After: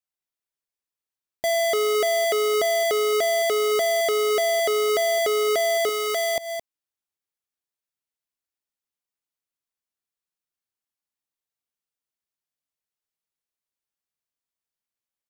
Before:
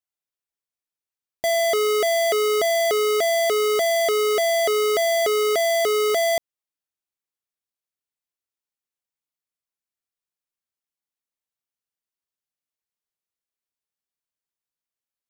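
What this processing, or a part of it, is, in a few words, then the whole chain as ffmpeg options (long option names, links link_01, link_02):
ducked delay: -filter_complex "[0:a]asplit=3[link_01][link_02][link_03];[link_02]adelay=217,volume=-7.5dB[link_04];[link_03]apad=whole_len=684227[link_05];[link_04][link_05]sidechaincompress=threshold=-34dB:ratio=8:attack=16:release=148[link_06];[link_01][link_06]amix=inputs=2:normalize=0,asettb=1/sr,asplit=3[link_07][link_08][link_09];[link_07]atrim=end=5.894[link_10];[link_08]atrim=start=5.89:end=6.36,asetpts=PTS-STARTPTS,afade=type=in:duration=0.004:curve=qsin,afade=type=out:start_time=0.466:duration=0.004:curve=qsin,equalizer=frequency=200:width_type=o:width=2.1:gain=-12[link_11];[link_09]atrim=start=6.356[link_12];[link_10][link_11]acrossfade=duration=0.004:curve1=hsin:curve2=qsin[link_13];[link_13][link_12]acrossfade=duration=0.004:curve1=qsin:curve2=hsin,volume=-1.5dB"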